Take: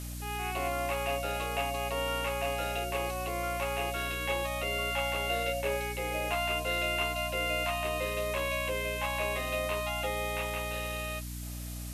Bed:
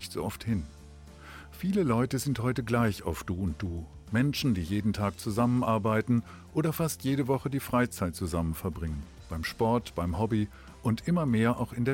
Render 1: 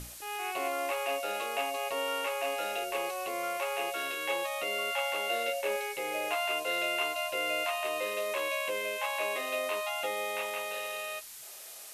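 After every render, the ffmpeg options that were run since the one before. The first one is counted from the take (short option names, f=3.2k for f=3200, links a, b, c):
-af "bandreject=f=60:t=h:w=6,bandreject=f=120:t=h:w=6,bandreject=f=180:t=h:w=6,bandreject=f=240:t=h:w=6,bandreject=f=300:t=h:w=6"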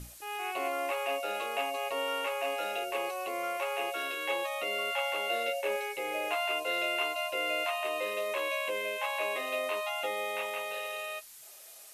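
-af "afftdn=nr=6:nf=-47"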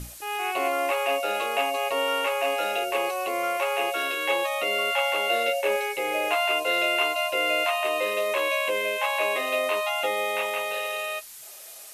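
-af "volume=7.5dB"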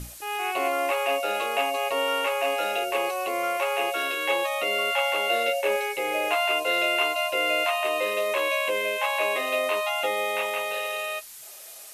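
-af anull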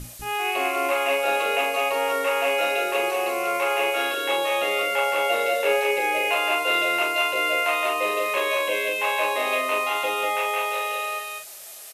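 -filter_complex "[0:a]asplit=2[a][b];[b]adelay=41,volume=-5.5dB[c];[a][c]amix=inputs=2:normalize=0,aecho=1:1:195:0.631"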